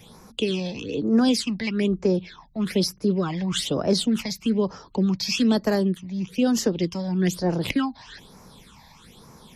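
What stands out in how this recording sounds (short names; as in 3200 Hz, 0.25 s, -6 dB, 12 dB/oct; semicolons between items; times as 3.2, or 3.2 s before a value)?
phasing stages 8, 1.1 Hz, lowest notch 380–3300 Hz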